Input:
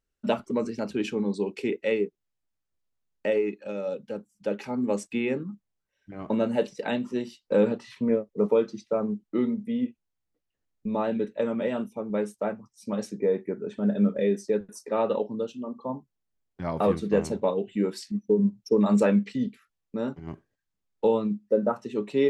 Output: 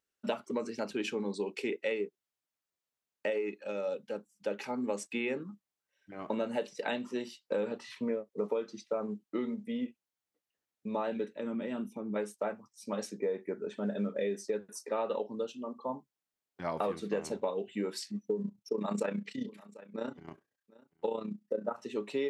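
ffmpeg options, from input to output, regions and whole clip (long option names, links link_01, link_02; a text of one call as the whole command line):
ffmpeg -i in.wav -filter_complex "[0:a]asettb=1/sr,asplit=3[link_01][link_02][link_03];[link_01]atrim=end=11.354[link_04];[link_02]atrim=start=11.35:end=12.16,asetpts=PTS-STARTPTS,afade=type=in:duration=0.004:curve=qsin,afade=type=out:start_time=0.806:duration=0.004:curve=qsin,acompressor=threshold=-38dB:ratio=2:attack=3.2:release=140:knee=1:detection=peak,lowshelf=frequency=390:width_type=q:width=1.5:gain=7.5[link_05];[link_03]atrim=start=12.156[link_06];[link_04][link_05]acrossfade=duration=0.004:curve1=hsin:curve2=qsin[link_07];[link_07][link_06]acrossfade=duration=0.004:curve1=qsin:curve2=hsin,asettb=1/sr,asplit=3[link_08][link_09][link_10];[link_08]atrim=end=18.424[link_11];[link_09]atrim=start=18.42:end=21.78,asetpts=PTS-STARTPTS,afade=type=in:duration=0.004:curve=qsin,afade=type=out:start_time=3.356:duration=0.004:curve=qsin,tremolo=f=30:d=0.71,aecho=1:1:743:0.0668,atrim=end_sample=148176[link_12];[link_10]atrim=start=21.776[link_13];[link_11][link_12]acrossfade=duration=0.004:curve1=hsin:curve2=qsin[link_14];[link_14][link_13]acrossfade=duration=0.004:curve1=qsin:curve2=hsin,highpass=frequency=500:poles=1,acompressor=threshold=-29dB:ratio=6" out.wav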